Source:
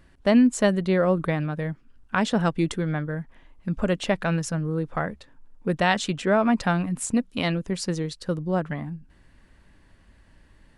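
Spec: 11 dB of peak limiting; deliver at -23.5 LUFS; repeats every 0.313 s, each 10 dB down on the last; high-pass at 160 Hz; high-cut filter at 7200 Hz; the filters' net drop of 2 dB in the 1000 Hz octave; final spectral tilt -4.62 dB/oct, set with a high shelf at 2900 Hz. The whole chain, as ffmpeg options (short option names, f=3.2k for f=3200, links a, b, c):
-af "highpass=160,lowpass=7.2k,equalizer=f=1k:t=o:g=-4,highshelf=f=2.9k:g=8,alimiter=limit=-14.5dB:level=0:latency=1,aecho=1:1:313|626|939|1252:0.316|0.101|0.0324|0.0104,volume=3.5dB"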